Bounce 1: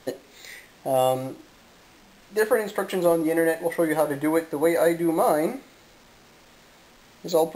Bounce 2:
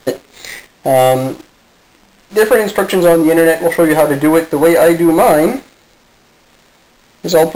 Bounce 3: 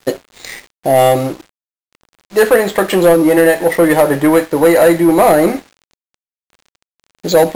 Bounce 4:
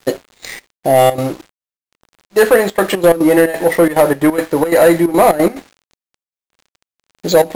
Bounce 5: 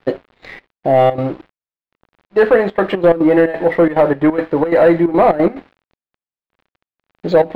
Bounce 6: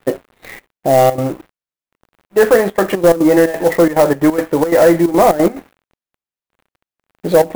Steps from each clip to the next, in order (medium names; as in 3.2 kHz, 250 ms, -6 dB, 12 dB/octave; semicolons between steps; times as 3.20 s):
waveshaping leveller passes 2; trim +7 dB
crossover distortion -43.5 dBFS
trance gate "xxxx.xx.x.xxx." 178 bpm -12 dB
distance through air 390 m
sampling jitter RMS 0.029 ms; trim +1 dB